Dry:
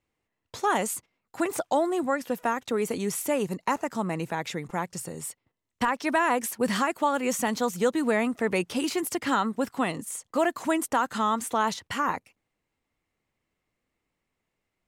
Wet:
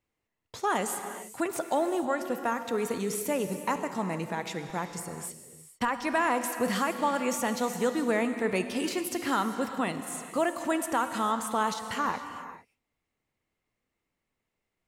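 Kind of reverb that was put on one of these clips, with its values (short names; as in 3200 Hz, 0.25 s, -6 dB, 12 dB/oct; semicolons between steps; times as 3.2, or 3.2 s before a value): non-linear reverb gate 0.48 s flat, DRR 7.5 dB; gain -3 dB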